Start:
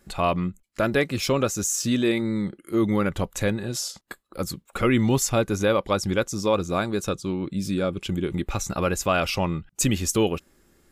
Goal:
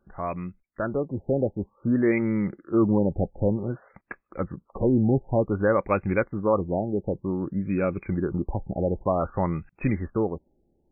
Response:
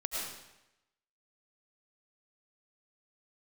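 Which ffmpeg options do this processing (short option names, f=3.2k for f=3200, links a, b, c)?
-af "dynaudnorm=f=210:g=11:m=11.5dB,aemphasis=mode=production:type=cd,afftfilt=real='re*lt(b*sr/1024,840*pow(2700/840,0.5+0.5*sin(2*PI*0.54*pts/sr)))':imag='im*lt(b*sr/1024,840*pow(2700/840,0.5+0.5*sin(2*PI*0.54*pts/sr)))':win_size=1024:overlap=0.75,volume=-7.5dB"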